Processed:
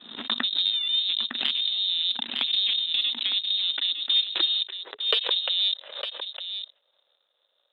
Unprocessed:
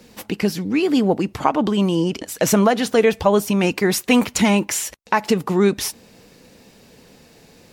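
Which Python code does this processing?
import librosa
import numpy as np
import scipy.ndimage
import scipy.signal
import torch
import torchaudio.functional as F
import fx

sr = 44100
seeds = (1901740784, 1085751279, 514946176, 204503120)

p1 = fx.env_lowpass_down(x, sr, base_hz=500.0, full_db=-15.0)
p2 = fx.peak_eq(p1, sr, hz=250.0, db=11.0, octaves=1.9)
p3 = fx.notch(p2, sr, hz=1700.0, q=5.3)
p4 = fx.over_compress(p3, sr, threshold_db=-15.0, ratio=-0.5)
p5 = p3 + F.gain(torch.from_numpy(p4), 1.5).numpy()
p6 = fx.power_curve(p5, sr, exponent=2.0)
p7 = fx.freq_invert(p6, sr, carrier_hz=3900)
p8 = np.clip(p7, -10.0 ** (-7.5 / 20.0), 10.0 ** (-7.5 / 20.0))
p9 = fx.air_absorb(p8, sr, metres=340.0)
p10 = p9 + fx.echo_single(p9, sr, ms=907, db=-9.5, dry=0)
p11 = fx.filter_sweep_highpass(p10, sr, from_hz=240.0, to_hz=550.0, start_s=3.54, end_s=5.58, q=6.4)
y = fx.pre_swell(p11, sr, db_per_s=84.0)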